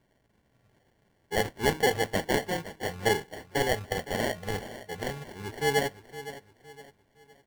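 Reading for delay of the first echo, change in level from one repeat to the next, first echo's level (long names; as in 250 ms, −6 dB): 513 ms, −8.5 dB, −14.5 dB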